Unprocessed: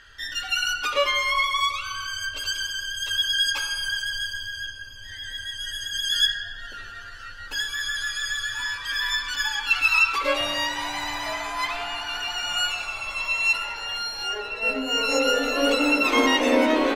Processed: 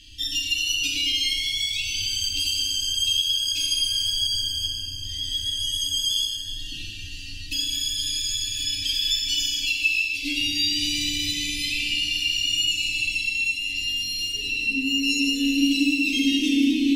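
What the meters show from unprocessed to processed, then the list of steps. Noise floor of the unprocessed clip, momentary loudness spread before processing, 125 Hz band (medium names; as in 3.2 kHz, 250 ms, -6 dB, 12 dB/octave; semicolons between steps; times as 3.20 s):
-39 dBFS, 12 LU, +7.5 dB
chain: Chebyshev band-stop 310–2600 Hz, order 4; compression, threshold -32 dBFS, peak gain reduction 15.5 dB; FDN reverb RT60 2.1 s, low-frequency decay 0.85×, high-frequency decay 0.8×, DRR -2 dB; trim +7 dB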